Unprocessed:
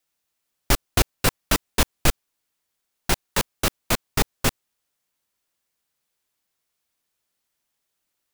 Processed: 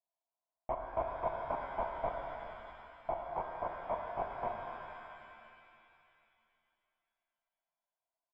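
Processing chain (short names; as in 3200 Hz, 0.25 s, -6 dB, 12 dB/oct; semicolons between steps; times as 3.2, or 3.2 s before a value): vocal tract filter a; pitch shift -1.5 st; shimmer reverb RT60 2.7 s, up +7 st, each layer -8 dB, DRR 1.5 dB; gain +1 dB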